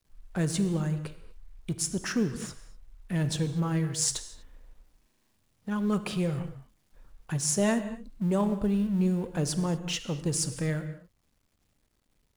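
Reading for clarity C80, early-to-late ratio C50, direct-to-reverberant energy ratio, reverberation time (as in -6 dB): 12.5 dB, 11.5 dB, 10.5 dB, no single decay rate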